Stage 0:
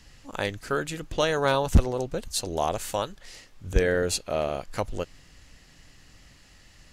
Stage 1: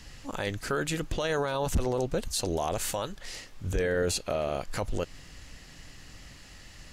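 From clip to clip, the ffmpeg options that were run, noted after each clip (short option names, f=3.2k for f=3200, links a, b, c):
-filter_complex "[0:a]asplit=2[a][b];[b]acompressor=threshold=-32dB:ratio=6,volume=-2.5dB[c];[a][c]amix=inputs=2:normalize=0,alimiter=limit=-20dB:level=0:latency=1:release=12"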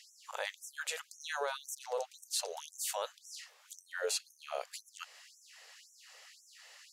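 -af "afftfilt=real='re*gte(b*sr/1024,400*pow(5600/400,0.5+0.5*sin(2*PI*1.9*pts/sr)))':imag='im*gte(b*sr/1024,400*pow(5600/400,0.5+0.5*sin(2*PI*1.9*pts/sr)))':win_size=1024:overlap=0.75,volume=-3.5dB"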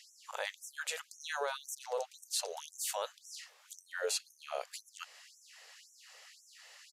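-af "aresample=32000,aresample=44100"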